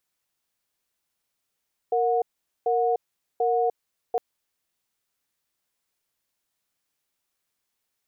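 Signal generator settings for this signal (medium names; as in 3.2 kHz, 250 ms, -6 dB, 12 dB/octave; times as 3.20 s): cadence 465 Hz, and 729 Hz, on 0.30 s, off 0.44 s, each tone -22.5 dBFS 2.26 s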